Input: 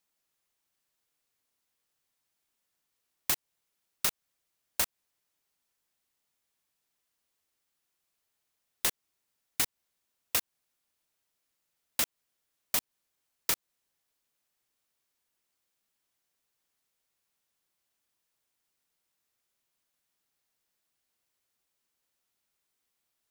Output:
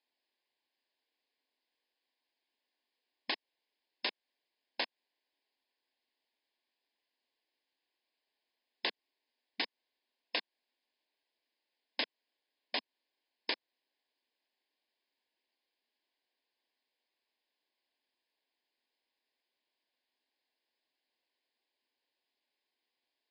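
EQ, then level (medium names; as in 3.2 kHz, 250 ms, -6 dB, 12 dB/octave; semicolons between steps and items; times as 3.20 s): brick-wall FIR band-pass 220–5200 Hz; Butterworth band-stop 1.3 kHz, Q 2.9; 0.0 dB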